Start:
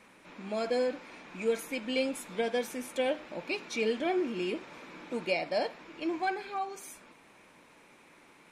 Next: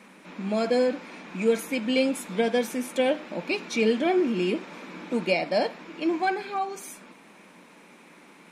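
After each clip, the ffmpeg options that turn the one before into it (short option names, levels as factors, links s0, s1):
-af "lowshelf=f=140:t=q:w=3:g=-9.5,volume=1.88"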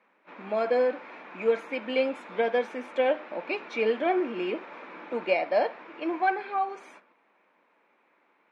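-af "aeval=exprs='0.282*(cos(1*acos(clip(val(0)/0.282,-1,1)))-cos(1*PI/2))+0.0126*(cos(3*acos(clip(val(0)/0.282,-1,1)))-cos(3*PI/2))':c=same,agate=range=0.224:threshold=0.00501:ratio=16:detection=peak,highpass=480,lowpass=2000,volume=1.41"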